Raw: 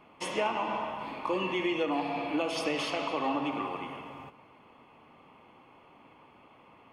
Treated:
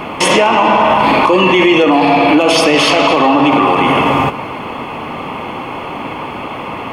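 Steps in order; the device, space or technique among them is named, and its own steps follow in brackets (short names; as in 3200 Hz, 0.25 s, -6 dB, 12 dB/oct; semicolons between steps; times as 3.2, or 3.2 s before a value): loud club master (compressor 2.5:1, threshold -33 dBFS, peak gain reduction 6 dB; hard clip -25 dBFS, distortion -32 dB; maximiser +34.5 dB); gain -1 dB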